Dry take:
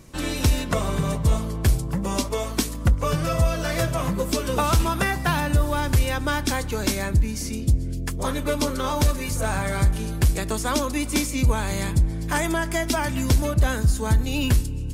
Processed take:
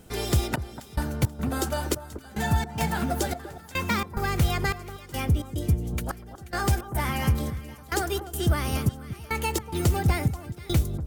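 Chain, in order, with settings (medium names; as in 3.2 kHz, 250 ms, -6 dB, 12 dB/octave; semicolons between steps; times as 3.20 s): trance gate "xxxx...xx." 80 bpm -24 dB; echo whose repeats swap between lows and highs 326 ms, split 950 Hz, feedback 55%, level -11.5 dB; speed mistake 33 rpm record played at 45 rpm; trim -3 dB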